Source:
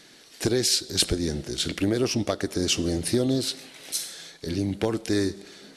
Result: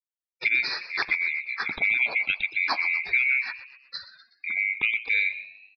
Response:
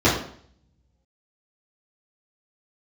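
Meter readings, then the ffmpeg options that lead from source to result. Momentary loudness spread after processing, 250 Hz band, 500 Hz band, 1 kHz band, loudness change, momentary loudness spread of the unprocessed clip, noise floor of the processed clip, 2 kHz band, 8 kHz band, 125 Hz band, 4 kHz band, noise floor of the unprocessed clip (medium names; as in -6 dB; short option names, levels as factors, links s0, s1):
16 LU, -26.0 dB, -20.0 dB, +3.5 dB, +2.0 dB, 9 LU, under -85 dBFS, +16.5 dB, under -30 dB, under -25 dB, -7.5 dB, -52 dBFS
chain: -filter_complex "[0:a]afftfilt=real='real(if(lt(b,920),b+92*(1-2*mod(floor(b/92),2)),b),0)':imag='imag(if(lt(b,920),b+92*(1-2*mod(floor(b/92),2)),b),0)':win_size=2048:overlap=0.75,agate=range=0.0251:threshold=0.00891:ratio=16:detection=peak,afftdn=nr=33:nf=-37,asplit=2[s0][s1];[s1]asplit=4[s2][s3][s4][s5];[s2]adelay=123,afreqshift=70,volume=0.178[s6];[s3]adelay=246,afreqshift=140,volume=0.0822[s7];[s4]adelay=369,afreqshift=210,volume=0.0376[s8];[s5]adelay=492,afreqshift=280,volume=0.0174[s9];[s6][s7][s8][s9]amix=inputs=4:normalize=0[s10];[s0][s10]amix=inputs=2:normalize=0,aresample=11025,aresample=44100"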